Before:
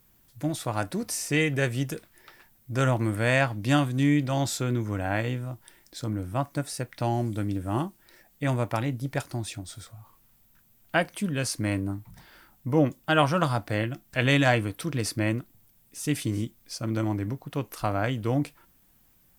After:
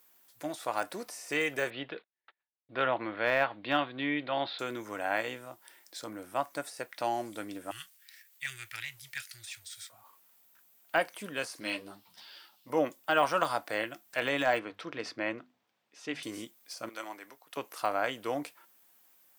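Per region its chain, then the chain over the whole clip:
0:01.70–0:04.59: Butterworth low-pass 4,200 Hz 72 dB per octave + noise gate −49 dBFS, range −36 dB
0:07.71–0:09.90: inverse Chebyshev band-stop filter 200–1,000 Hz + leveller curve on the samples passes 1
0:11.60–0:12.70: flat-topped bell 3,800 Hz +12 dB 1.2 octaves + string-ensemble chorus
0:14.59–0:16.23: high-frequency loss of the air 200 metres + mains-hum notches 50/100/150/200/250 Hz
0:16.89–0:17.57: high-pass filter 1,200 Hz 6 dB per octave + multiband upward and downward expander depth 40%
whole clip: high-pass filter 520 Hz 12 dB per octave; de-essing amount 90%

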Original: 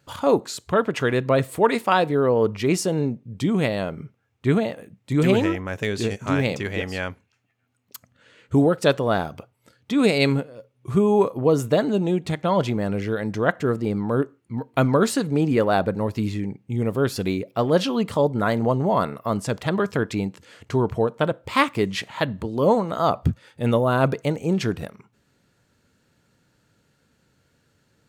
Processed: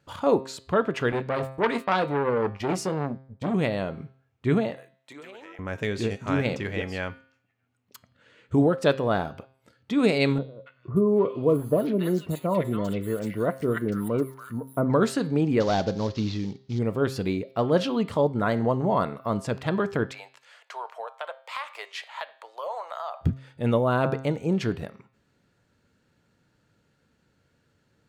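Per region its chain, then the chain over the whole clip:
0:01.12–0:03.54: noise gate −34 dBFS, range −30 dB + double-tracking delay 21 ms −12 dB + saturating transformer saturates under 1,400 Hz
0:04.77–0:05.59: high-pass filter 630 Hz + notch filter 4,800 Hz, Q 24 + downward compressor 10 to 1, threshold −37 dBFS
0:10.38–0:14.90: notch comb filter 810 Hz + bad sample-rate conversion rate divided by 4×, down none, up hold + three-band delay without the direct sound lows, mids, highs 280/580 ms, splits 1,300/4,100 Hz
0:15.60–0:16.79: variable-slope delta modulation 32 kbit/s + high shelf with overshoot 2,900 Hz +8 dB, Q 1.5 + floating-point word with a short mantissa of 6 bits
0:20.12–0:23.21: Butterworth high-pass 620 Hz + downward compressor, threshold −26 dBFS
whole clip: high-shelf EQ 5,900 Hz −9 dB; hum removal 132.9 Hz, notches 38; level −2.5 dB

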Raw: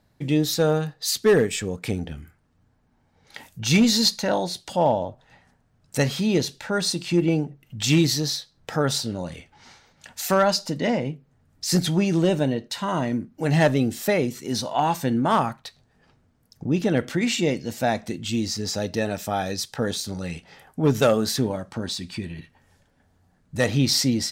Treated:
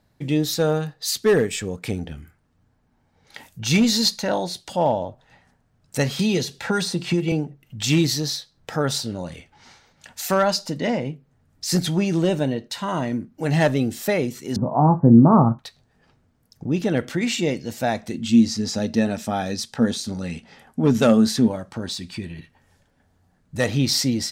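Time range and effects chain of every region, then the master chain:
0:06.19–0:07.32: notch comb filter 300 Hz + multiband upward and downward compressor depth 100%
0:14.56–0:15.59: elliptic low-pass filter 1,200 Hz, stop band 70 dB + parametric band 150 Hz +14.5 dB 2.6 octaves + double-tracking delay 26 ms −12 dB
0:18.14–0:21.48: low-pass filter 11,000 Hz + parametric band 230 Hz +13.5 dB 0.28 octaves
whole clip: no processing

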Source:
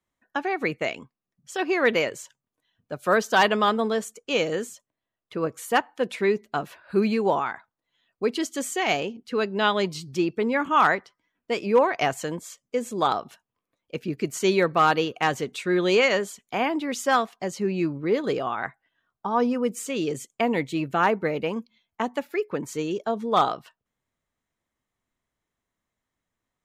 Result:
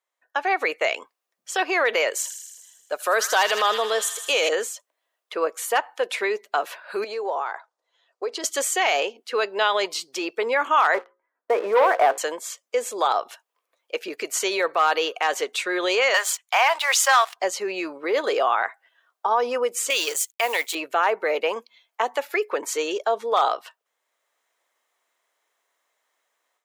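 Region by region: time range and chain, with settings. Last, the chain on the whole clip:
0:02.10–0:04.49: high-shelf EQ 5,100 Hz +8 dB + delay with a high-pass on its return 79 ms, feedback 68%, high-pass 2,200 Hz, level −8.5 dB
0:07.04–0:08.44: Chebyshev band-pass filter 360–5,800 Hz + downward compressor, threshold −29 dBFS + parametric band 2,600 Hz −10 dB 1.7 octaves
0:10.94–0:12.18: low-pass filter 1,600 Hz 24 dB per octave + mains-hum notches 60/120/180/240/300/360/420/480/540 Hz + leveller curve on the samples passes 2
0:16.14–0:17.36: high-pass filter 800 Hz 24 dB per octave + leveller curve on the samples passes 2
0:19.90–0:20.75: mu-law and A-law mismatch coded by A + spectral tilt +4 dB per octave
whole clip: automatic gain control gain up to 12 dB; brickwall limiter −10 dBFS; high-pass filter 480 Hz 24 dB per octave

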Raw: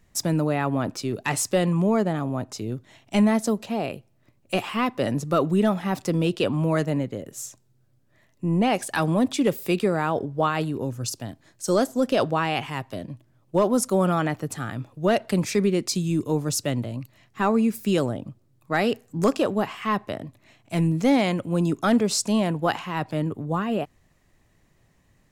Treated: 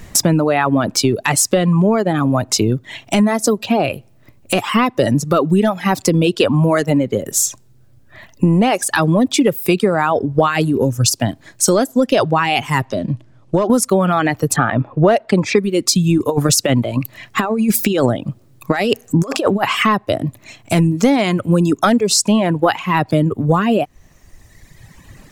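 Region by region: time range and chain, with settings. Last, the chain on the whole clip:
0:12.85–0:13.70: low-pass filter 7,000 Hz + downward compressor 2 to 1, threshold −38 dBFS
0:14.56–0:15.59: parametric band 770 Hz +9.5 dB 2.7 octaves + low-pass that shuts in the quiet parts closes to 1,900 Hz, open at −9.5 dBFS
0:16.18–0:19.83: low-shelf EQ 230 Hz −4 dB + compressor whose output falls as the input rises −27 dBFS, ratio −0.5
whole clip: reverb reduction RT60 1.5 s; downward compressor 6 to 1, threshold −36 dBFS; boost into a limiter +25 dB; level −1 dB

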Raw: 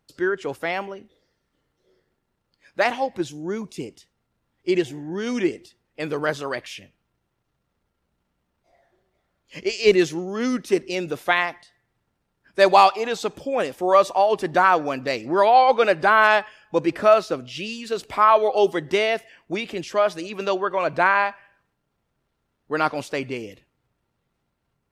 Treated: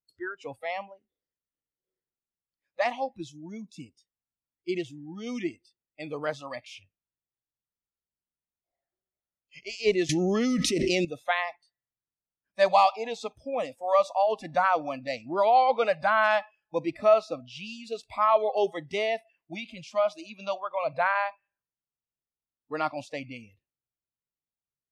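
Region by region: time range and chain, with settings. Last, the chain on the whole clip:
0:10.09–0:11.05: parametric band 870 Hz −7 dB 1.8 octaves + envelope flattener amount 100%
whole clip: noise reduction from a noise print of the clip's start 21 dB; low-pass filter 7,600 Hz 12 dB per octave; dynamic equaliser 670 Hz, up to +4 dB, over −32 dBFS, Q 3.1; level −8 dB

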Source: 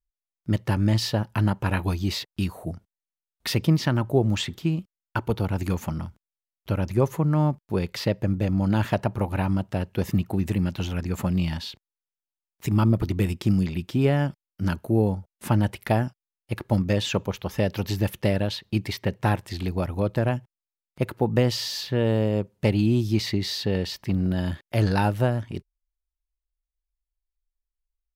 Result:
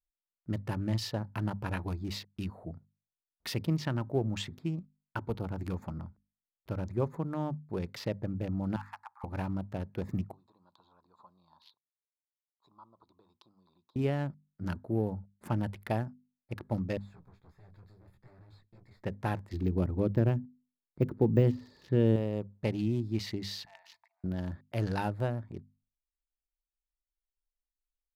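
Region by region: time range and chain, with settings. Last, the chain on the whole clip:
0:08.76–0:09.24: Chebyshev high-pass with heavy ripple 810 Hz, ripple 3 dB + parametric band 3,400 Hz −12 dB 0.66 octaves
0:10.32–0:13.96: downward compressor 2 to 1, threshold −26 dBFS + pair of resonant band-passes 2,000 Hz, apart 1.9 octaves
0:16.97–0:19.03: parametric band 530 Hz −13 dB 1.9 octaves + tube saturation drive 39 dB, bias 0.7 + micro pitch shift up and down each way 22 cents
0:19.53–0:22.16: de-essing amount 95% + low shelf with overshoot 500 Hz +7 dB, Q 1.5
0:23.65–0:24.24: volume swells 326 ms + Chebyshev high-pass with heavy ripple 650 Hz, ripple 9 dB
whole clip: adaptive Wiener filter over 15 samples; mains-hum notches 50/100/150/200/250 Hz; level −9 dB

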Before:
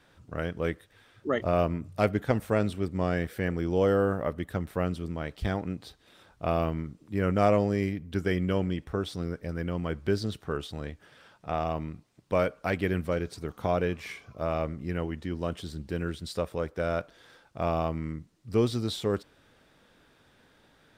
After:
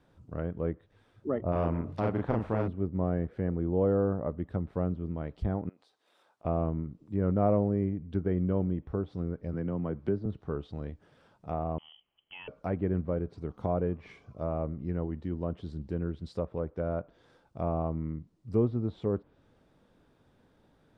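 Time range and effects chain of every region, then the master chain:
0:01.52–0:02.68: double-tracking delay 36 ms −2 dB + every bin compressed towards the loudest bin 2 to 1
0:05.69–0:06.45: high-pass filter 660 Hz + downward compressor, threshold −52 dBFS
0:09.53–0:10.26: high-pass filter 110 Hz + multiband upward and downward compressor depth 40%
0:11.78–0:12.48: downward compressor 2 to 1, threshold −38 dBFS + voice inversion scrambler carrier 3,200 Hz
whole clip: treble cut that deepens with the level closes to 1,500 Hz, closed at −26.5 dBFS; drawn EQ curve 190 Hz 0 dB, 1,000 Hz −5 dB, 1,700 Hz −12 dB

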